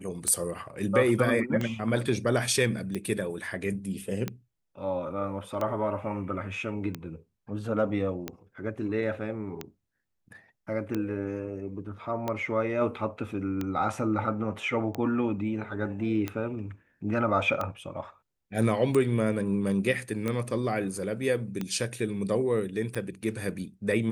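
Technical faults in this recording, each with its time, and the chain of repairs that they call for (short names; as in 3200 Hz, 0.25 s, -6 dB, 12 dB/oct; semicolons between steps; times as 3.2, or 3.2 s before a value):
tick 45 rpm -17 dBFS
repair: de-click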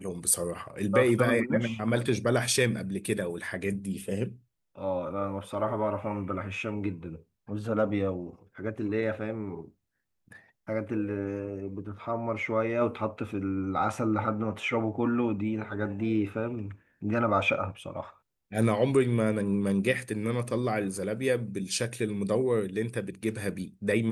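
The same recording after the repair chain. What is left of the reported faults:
none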